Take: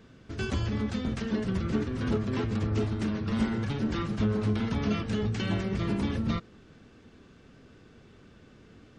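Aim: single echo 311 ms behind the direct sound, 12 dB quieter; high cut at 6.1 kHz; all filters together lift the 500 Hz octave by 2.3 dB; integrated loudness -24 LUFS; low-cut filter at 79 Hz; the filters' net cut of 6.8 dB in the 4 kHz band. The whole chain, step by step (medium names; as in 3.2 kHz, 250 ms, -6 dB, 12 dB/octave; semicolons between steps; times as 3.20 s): high-pass 79 Hz; low-pass 6.1 kHz; peaking EQ 500 Hz +3 dB; peaking EQ 4 kHz -9 dB; delay 311 ms -12 dB; trim +6 dB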